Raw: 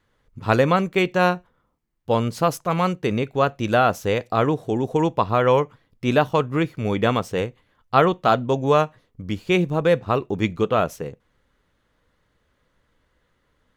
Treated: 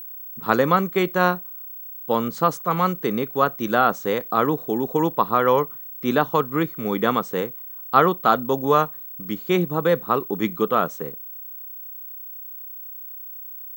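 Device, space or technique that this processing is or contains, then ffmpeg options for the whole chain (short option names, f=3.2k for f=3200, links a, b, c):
old television with a line whistle: -af "highpass=f=160:w=0.5412,highpass=f=160:w=1.3066,equalizer=f=630:t=q:w=4:g=-5,equalizer=f=1.2k:t=q:w=4:g=5,equalizer=f=2.6k:t=q:w=4:g=-9,equalizer=f=5.1k:t=q:w=4:g=-5,lowpass=f=8.8k:w=0.5412,lowpass=f=8.8k:w=1.3066,aeval=exprs='val(0)+0.02*sin(2*PI*15734*n/s)':c=same"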